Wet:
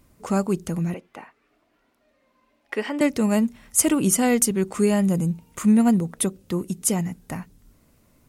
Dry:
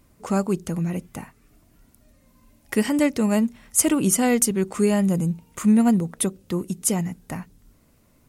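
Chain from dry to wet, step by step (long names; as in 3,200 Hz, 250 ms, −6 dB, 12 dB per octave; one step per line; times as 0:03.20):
0:00.94–0:03.01: three-way crossover with the lows and the highs turned down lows −23 dB, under 320 Hz, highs −20 dB, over 4,000 Hz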